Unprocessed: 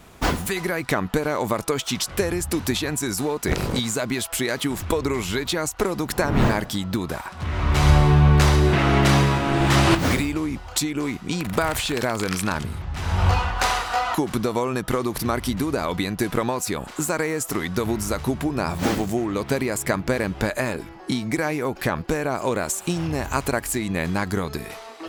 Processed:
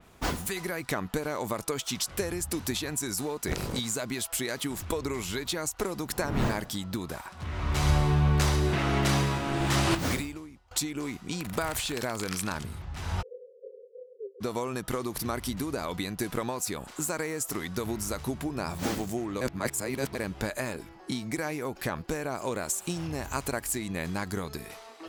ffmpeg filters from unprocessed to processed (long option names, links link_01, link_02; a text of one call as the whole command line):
ffmpeg -i in.wav -filter_complex "[0:a]asplit=3[link_01][link_02][link_03];[link_01]afade=type=out:start_time=13.21:duration=0.02[link_04];[link_02]asuperpass=centerf=460:order=20:qfactor=3.1,afade=type=in:start_time=13.21:duration=0.02,afade=type=out:start_time=14.4:duration=0.02[link_05];[link_03]afade=type=in:start_time=14.4:duration=0.02[link_06];[link_04][link_05][link_06]amix=inputs=3:normalize=0,asplit=4[link_07][link_08][link_09][link_10];[link_07]atrim=end=10.71,asetpts=PTS-STARTPTS,afade=type=out:start_time=10.15:duration=0.56:curve=qua:silence=0.105925[link_11];[link_08]atrim=start=10.71:end=19.412,asetpts=PTS-STARTPTS,afade=type=in:duration=0.004:curve=hsin:silence=0.105925[link_12];[link_09]atrim=start=19.408:end=20.152,asetpts=PTS-STARTPTS,areverse[link_13];[link_10]atrim=start=20.148[link_14];[link_11][link_12]concat=n=2:v=0:a=1[link_15];[link_15][link_13]acrossfade=duration=0.004:curve1=hsin:curve2=hsin[link_16];[link_16][link_14]acrossfade=duration=0.004:curve1=hsin:curve2=hsin,adynamicequalizer=threshold=0.0112:dfrequency=4100:dqfactor=0.7:tfrequency=4100:tqfactor=0.7:attack=5:release=100:ratio=0.375:range=2.5:mode=boostabove:tftype=highshelf,volume=-8.5dB" out.wav